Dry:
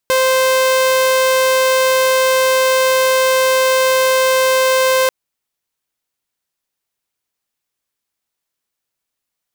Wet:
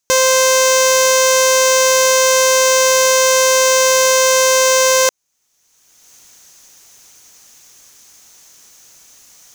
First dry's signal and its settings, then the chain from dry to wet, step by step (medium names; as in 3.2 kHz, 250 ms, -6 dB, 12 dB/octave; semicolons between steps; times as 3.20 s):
tone saw 521 Hz -8.5 dBFS 4.99 s
recorder AGC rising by 29 dB/s; peaking EQ 6.3 kHz +14.5 dB 0.49 oct